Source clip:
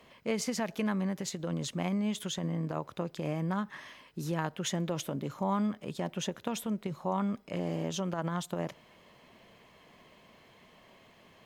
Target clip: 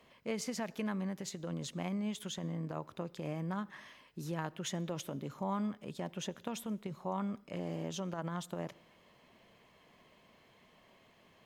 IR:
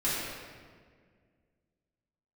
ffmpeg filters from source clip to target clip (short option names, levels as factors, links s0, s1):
-filter_complex "[0:a]asplit=2[s0][s1];[1:a]atrim=start_sample=2205,afade=t=out:st=0.21:d=0.01,atrim=end_sample=9702,adelay=73[s2];[s1][s2]afir=irnorm=-1:irlink=0,volume=0.0224[s3];[s0][s3]amix=inputs=2:normalize=0,volume=0.531"